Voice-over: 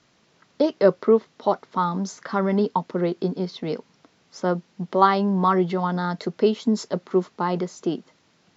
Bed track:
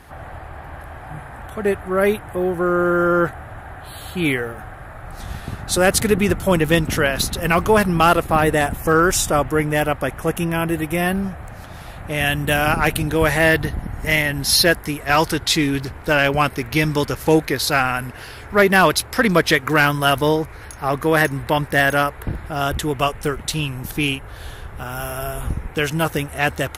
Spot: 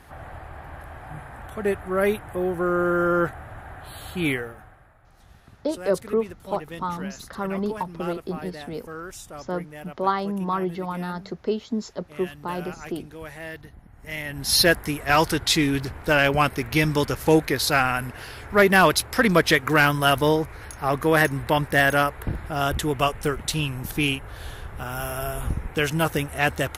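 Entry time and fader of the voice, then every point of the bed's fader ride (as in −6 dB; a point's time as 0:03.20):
5.05 s, −6.0 dB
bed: 0:04.32 −4.5 dB
0:04.99 −21.5 dB
0:13.91 −21.5 dB
0:14.61 −2.5 dB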